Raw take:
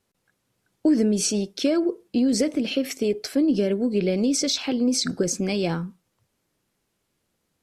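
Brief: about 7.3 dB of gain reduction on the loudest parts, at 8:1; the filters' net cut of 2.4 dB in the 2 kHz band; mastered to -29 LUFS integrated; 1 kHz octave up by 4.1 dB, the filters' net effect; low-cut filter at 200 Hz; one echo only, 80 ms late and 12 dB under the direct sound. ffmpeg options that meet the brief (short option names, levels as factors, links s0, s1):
-af "highpass=200,equalizer=f=1000:t=o:g=7,equalizer=f=2000:t=o:g=-5,acompressor=threshold=0.0631:ratio=8,aecho=1:1:80:0.251,volume=0.944"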